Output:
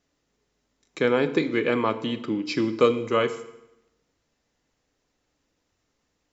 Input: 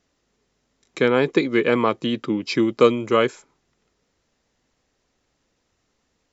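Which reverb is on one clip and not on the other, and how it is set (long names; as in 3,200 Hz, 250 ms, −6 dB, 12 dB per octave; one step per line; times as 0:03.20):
feedback delay network reverb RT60 0.88 s, low-frequency decay 1.1×, high-frequency decay 0.9×, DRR 9 dB
level −4.5 dB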